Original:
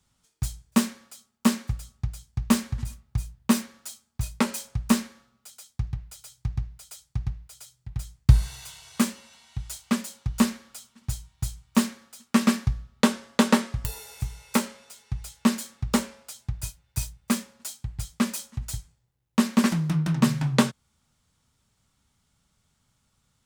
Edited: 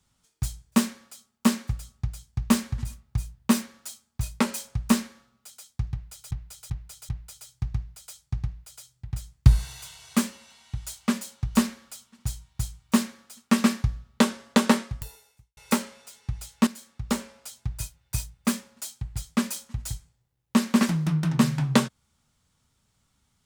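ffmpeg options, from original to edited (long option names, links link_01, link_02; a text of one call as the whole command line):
ffmpeg -i in.wav -filter_complex "[0:a]asplit=6[link_01][link_02][link_03][link_04][link_05][link_06];[link_01]atrim=end=6.312[link_07];[link_02]atrim=start=5.918:end=6.312[link_08];[link_03]atrim=start=5.918:end=6.312[link_09];[link_04]atrim=start=5.918:end=14.4,asetpts=PTS-STARTPTS,afade=type=out:start_time=7.692:duration=0.79:curve=qua[link_10];[link_05]atrim=start=14.4:end=15.5,asetpts=PTS-STARTPTS,afade=type=in:duration=0.004:curve=hsin,afade=type=out:start_time=1.096:duration=0.004:curve=hsin:silence=0.251189[link_11];[link_06]atrim=start=15.5,asetpts=PTS-STARTPTS,afade=type=in:duration=0.81:silence=0.251189[link_12];[link_07][link_08]acrossfade=duration=0.004:curve1=hsin:curve2=hsin[link_13];[link_13][link_09]acrossfade=duration=0.004:curve1=hsin:curve2=hsin[link_14];[link_10][link_11][link_12]concat=n=3:v=0:a=1[link_15];[link_14][link_15]acrossfade=duration=0.004:curve1=hsin:curve2=hsin" out.wav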